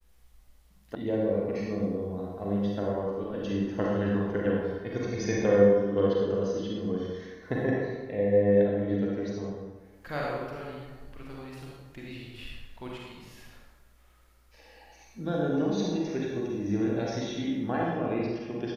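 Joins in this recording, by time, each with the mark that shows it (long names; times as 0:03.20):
0:00.95: cut off before it has died away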